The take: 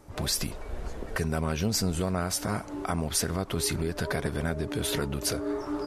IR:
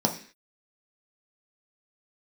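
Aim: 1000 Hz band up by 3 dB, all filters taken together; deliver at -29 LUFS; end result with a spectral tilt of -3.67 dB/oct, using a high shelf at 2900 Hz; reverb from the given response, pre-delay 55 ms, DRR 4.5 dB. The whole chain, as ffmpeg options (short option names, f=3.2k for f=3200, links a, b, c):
-filter_complex "[0:a]equalizer=f=1k:t=o:g=3,highshelf=f=2.9k:g=7.5,asplit=2[a][b];[1:a]atrim=start_sample=2205,adelay=55[c];[b][c]afir=irnorm=-1:irlink=0,volume=-15.5dB[d];[a][d]amix=inputs=2:normalize=0,volume=-5.5dB"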